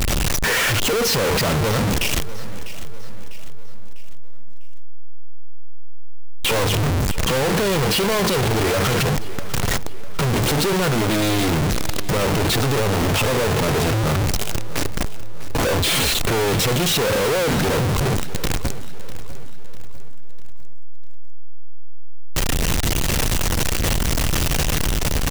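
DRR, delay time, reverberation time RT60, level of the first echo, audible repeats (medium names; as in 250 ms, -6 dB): no reverb, 649 ms, no reverb, -16.0 dB, 3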